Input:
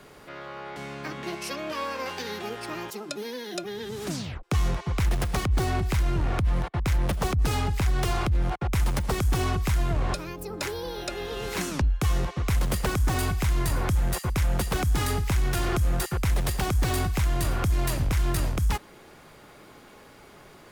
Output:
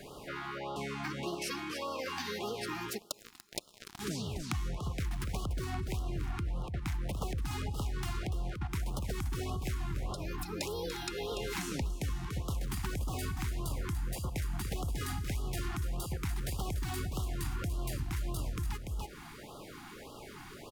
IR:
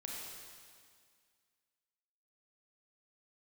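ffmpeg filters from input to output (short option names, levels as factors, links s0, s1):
-filter_complex "[0:a]aecho=1:1:290:0.376,asplit=3[s0][s1][s2];[s0]afade=t=out:st=2.97:d=0.02[s3];[s1]acrusher=bits=3:mix=0:aa=0.5,afade=t=in:st=2.97:d=0.02,afade=t=out:st=3.99:d=0.02[s4];[s2]afade=t=in:st=3.99:d=0.02[s5];[s3][s4][s5]amix=inputs=3:normalize=0,acompressor=threshold=0.0158:ratio=5,asplit=2[s6][s7];[1:a]atrim=start_sample=2205[s8];[s7][s8]afir=irnorm=-1:irlink=0,volume=0.133[s9];[s6][s9]amix=inputs=2:normalize=0,afftfilt=real='re*(1-between(b*sr/1024,480*pow(2000/480,0.5+0.5*sin(2*PI*1.7*pts/sr))/1.41,480*pow(2000/480,0.5+0.5*sin(2*PI*1.7*pts/sr))*1.41))':imag='im*(1-between(b*sr/1024,480*pow(2000/480,0.5+0.5*sin(2*PI*1.7*pts/sr))/1.41,480*pow(2000/480,0.5+0.5*sin(2*PI*1.7*pts/sr))*1.41))':win_size=1024:overlap=0.75,volume=1.19"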